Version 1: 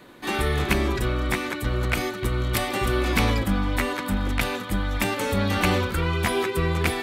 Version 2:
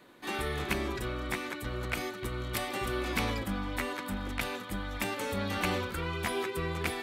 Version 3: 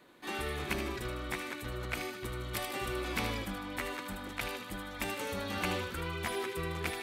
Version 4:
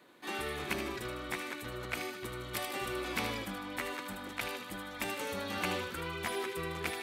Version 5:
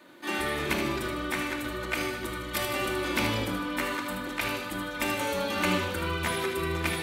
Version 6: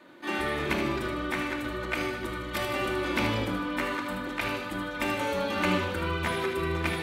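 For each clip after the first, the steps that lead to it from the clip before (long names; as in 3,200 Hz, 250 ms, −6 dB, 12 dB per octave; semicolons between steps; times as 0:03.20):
low-shelf EQ 160 Hz −6 dB; level −8 dB
mains-hum notches 50/100/150/200/250 Hz; delay with a high-pass on its return 77 ms, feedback 49%, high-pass 2,100 Hz, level −6 dB; level −3 dB
high-pass filter 150 Hz 6 dB per octave
rectangular room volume 2,400 cubic metres, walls furnished, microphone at 2.6 metres; level +5 dB
high-shelf EQ 5,100 Hz −10.5 dB; level +1 dB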